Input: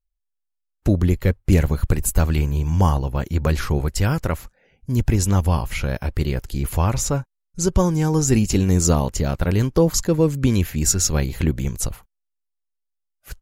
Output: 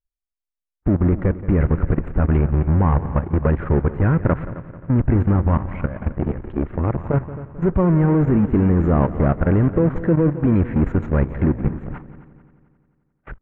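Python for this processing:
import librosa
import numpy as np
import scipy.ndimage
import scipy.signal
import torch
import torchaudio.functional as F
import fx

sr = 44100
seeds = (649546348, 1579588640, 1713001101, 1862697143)

p1 = fx.fuzz(x, sr, gain_db=43.0, gate_db=-47.0)
p2 = x + F.gain(torch.from_numpy(p1), -9.0).numpy()
p3 = fx.dynamic_eq(p2, sr, hz=250.0, q=0.89, threshold_db=-29.0, ratio=4.0, max_db=5)
p4 = fx.level_steps(p3, sr, step_db=15)
p5 = scipy.signal.sosfilt(scipy.signal.cheby2(4, 50, 4700.0, 'lowpass', fs=sr, output='sos'), p4)
p6 = p5 + fx.echo_heads(p5, sr, ms=88, heads='second and third', feedback_pct=47, wet_db=-16.0, dry=0)
y = fx.transformer_sat(p6, sr, knee_hz=330.0, at=(6.16, 7.14))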